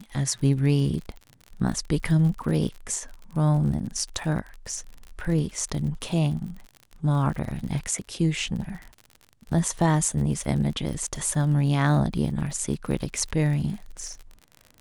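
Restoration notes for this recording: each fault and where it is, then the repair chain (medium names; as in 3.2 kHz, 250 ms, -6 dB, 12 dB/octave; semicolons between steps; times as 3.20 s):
crackle 52 per s -33 dBFS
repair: de-click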